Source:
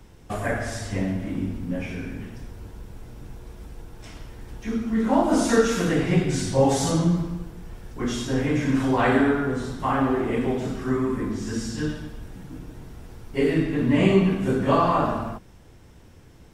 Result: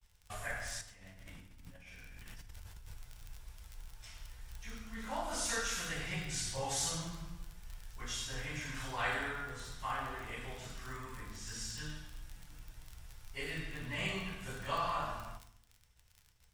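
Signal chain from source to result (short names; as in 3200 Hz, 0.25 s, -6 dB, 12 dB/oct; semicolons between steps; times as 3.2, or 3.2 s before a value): crackle 29/s -32 dBFS; expander -42 dBFS; passive tone stack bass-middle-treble 10-0-10; 0.81–2.94 negative-ratio compressor -48 dBFS, ratio -1; bell 310 Hz +3.5 dB 0.65 oct; FDN reverb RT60 0.67 s, low-frequency decay 1.6×, high-frequency decay 0.7×, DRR 9.5 dB; gain -4.5 dB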